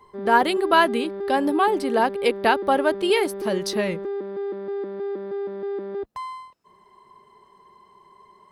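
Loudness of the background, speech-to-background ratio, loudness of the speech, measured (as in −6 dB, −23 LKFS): −30.5 LKFS, 8.5 dB, −22.0 LKFS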